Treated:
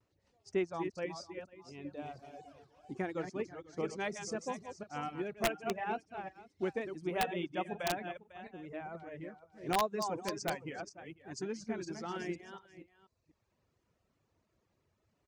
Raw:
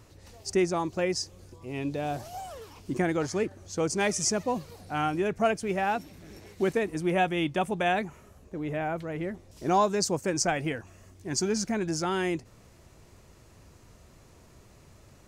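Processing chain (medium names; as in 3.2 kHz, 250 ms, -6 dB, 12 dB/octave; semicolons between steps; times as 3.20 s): chunks repeated in reverse 242 ms, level -4.5 dB; high-pass 110 Hz 6 dB/octave; distance through air 66 m; delay 492 ms -10 dB; vibrato 0.73 Hz 45 cents; treble shelf 9.1 kHz -6 dB; integer overflow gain 15 dB; reverb removal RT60 0.8 s; upward expansion 1.5:1, over -48 dBFS; trim -6.5 dB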